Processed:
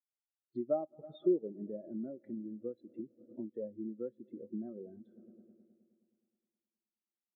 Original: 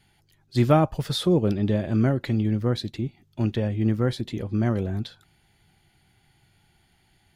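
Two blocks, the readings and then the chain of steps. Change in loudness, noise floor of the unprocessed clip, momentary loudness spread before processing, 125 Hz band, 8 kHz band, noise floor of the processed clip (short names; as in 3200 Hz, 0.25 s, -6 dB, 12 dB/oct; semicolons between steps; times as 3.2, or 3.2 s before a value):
-15.5 dB, -64 dBFS, 11 LU, -32.5 dB, n/a, under -85 dBFS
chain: multi-head echo 0.105 s, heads all three, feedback 74%, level -23 dB; compressor 8:1, threshold -34 dBFS, peak gain reduction 20 dB; HPF 320 Hz 12 dB/oct; air absorption 420 m; spectral expander 2.5:1; gain +8 dB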